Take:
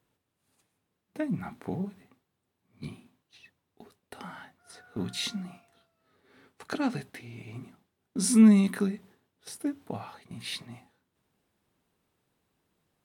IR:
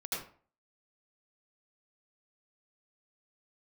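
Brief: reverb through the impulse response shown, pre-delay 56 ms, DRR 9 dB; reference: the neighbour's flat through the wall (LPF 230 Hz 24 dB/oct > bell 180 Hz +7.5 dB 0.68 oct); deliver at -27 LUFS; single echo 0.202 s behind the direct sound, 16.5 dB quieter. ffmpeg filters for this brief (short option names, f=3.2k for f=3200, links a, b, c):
-filter_complex "[0:a]aecho=1:1:202:0.15,asplit=2[a][b];[1:a]atrim=start_sample=2205,adelay=56[c];[b][c]afir=irnorm=-1:irlink=0,volume=-12dB[d];[a][d]amix=inputs=2:normalize=0,lowpass=f=230:w=0.5412,lowpass=f=230:w=1.3066,equalizer=f=180:t=o:w=0.68:g=7.5,volume=-3dB"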